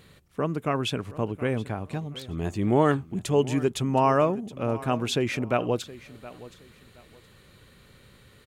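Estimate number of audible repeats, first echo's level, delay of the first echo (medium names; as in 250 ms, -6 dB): 2, -18.0 dB, 720 ms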